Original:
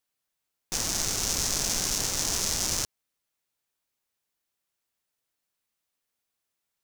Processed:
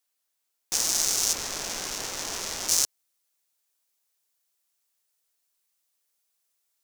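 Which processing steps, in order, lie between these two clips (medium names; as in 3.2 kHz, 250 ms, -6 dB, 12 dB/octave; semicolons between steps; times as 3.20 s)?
tone controls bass -12 dB, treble +5 dB, from 1.32 s treble -7 dB, from 2.68 s treble +8 dB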